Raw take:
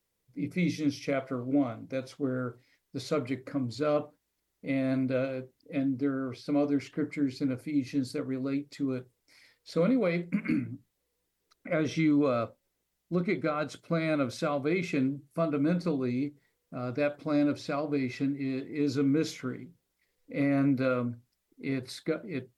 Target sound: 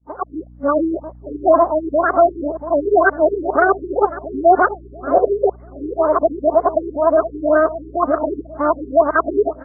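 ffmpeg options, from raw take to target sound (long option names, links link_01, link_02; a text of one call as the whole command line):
ffmpeg -i in.wav -filter_complex "[0:a]areverse,asetrate=103194,aresample=44100,aeval=exprs='val(0)+0.00158*(sin(2*PI*60*n/s)+sin(2*PI*2*60*n/s)/2+sin(2*PI*3*60*n/s)/3+sin(2*PI*4*60*n/s)/4+sin(2*PI*5*60*n/s)/5)':channel_layout=same,dynaudnorm=framelen=130:gausssize=5:maxgain=11dB,agate=range=-33dB:threshold=-52dB:ratio=3:detection=peak,asplit=2[link_01][link_02];[link_02]adelay=685,lowpass=frequency=1000:poles=1,volume=-11.5dB,asplit=2[link_03][link_04];[link_04]adelay=685,lowpass=frequency=1000:poles=1,volume=0.41,asplit=2[link_05][link_06];[link_06]adelay=685,lowpass=frequency=1000:poles=1,volume=0.41,asplit=2[link_07][link_08];[link_08]adelay=685,lowpass=frequency=1000:poles=1,volume=0.41[link_09];[link_03][link_05][link_07][link_09]amix=inputs=4:normalize=0[link_10];[link_01][link_10]amix=inputs=2:normalize=0,afftfilt=real='re*lt(b*sr/1024,430*pow(2200/430,0.5+0.5*sin(2*PI*2*pts/sr)))':imag='im*lt(b*sr/1024,430*pow(2200/430,0.5+0.5*sin(2*PI*2*pts/sr)))':win_size=1024:overlap=0.75,volume=5dB" out.wav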